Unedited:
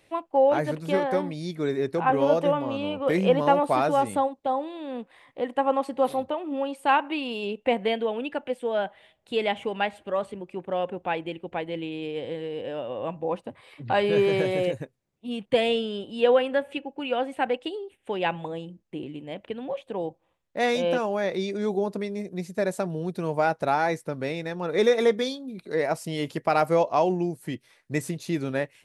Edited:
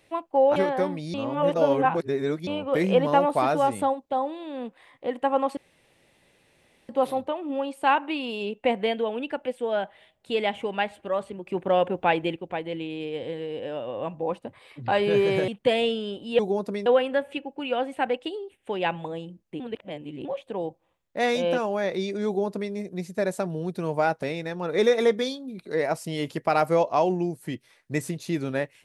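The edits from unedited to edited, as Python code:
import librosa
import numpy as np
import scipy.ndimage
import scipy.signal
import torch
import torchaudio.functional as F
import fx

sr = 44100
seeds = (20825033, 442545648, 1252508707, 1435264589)

y = fx.edit(x, sr, fx.cut(start_s=0.56, length_s=0.34),
    fx.reverse_span(start_s=1.48, length_s=1.33),
    fx.insert_room_tone(at_s=5.91, length_s=1.32),
    fx.clip_gain(start_s=10.49, length_s=0.89, db=6.0),
    fx.cut(start_s=14.5, length_s=0.85),
    fx.reverse_span(start_s=19.0, length_s=0.65),
    fx.duplicate(start_s=21.66, length_s=0.47, to_s=16.26),
    fx.cut(start_s=23.63, length_s=0.6), tone=tone)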